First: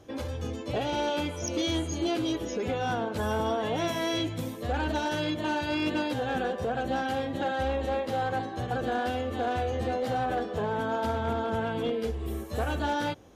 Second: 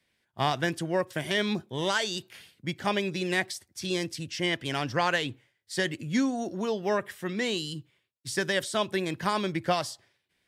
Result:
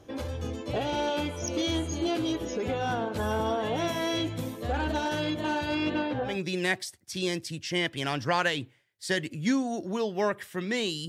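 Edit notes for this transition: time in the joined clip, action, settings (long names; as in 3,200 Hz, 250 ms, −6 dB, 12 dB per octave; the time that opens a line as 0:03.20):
first
0:05.75–0:06.39: low-pass filter 7,600 Hz → 1,200 Hz
0:06.31: continue with second from 0:02.99, crossfade 0.16 s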